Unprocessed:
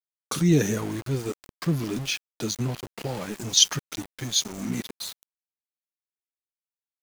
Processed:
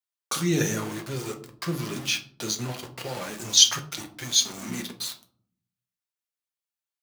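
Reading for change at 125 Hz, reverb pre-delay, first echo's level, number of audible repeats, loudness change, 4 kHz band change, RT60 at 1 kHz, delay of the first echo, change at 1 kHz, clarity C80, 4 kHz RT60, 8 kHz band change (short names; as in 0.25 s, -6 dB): -5.0 dB, 5 ms, none, none, +0.5 dB, +2.5 dB, 0.50 s, none, +2.0 dB, 16.5 dB, 0.30 s, +2.5 dB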